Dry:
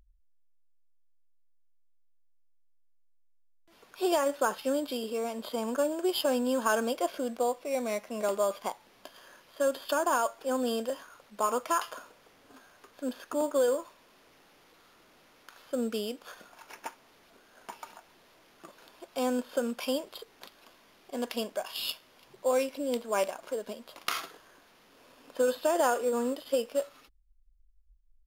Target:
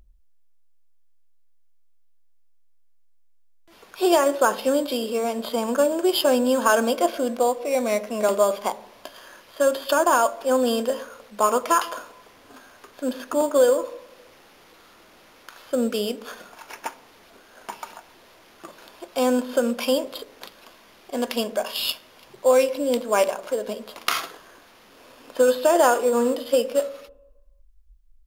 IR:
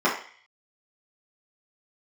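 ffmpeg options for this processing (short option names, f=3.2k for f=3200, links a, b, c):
-filter_complex "[0:a]asplit=2[a][b];[1:a]atrim=start_sample=2205,asetrate=22491,aresample=44100,lowshelf=f=470:g=9[c];[b][c]afir=irnorm=-1:irlink=0,volume=-39dB[d];[a][d]amix=inputs=2:normalize=0,volume=8.5dB"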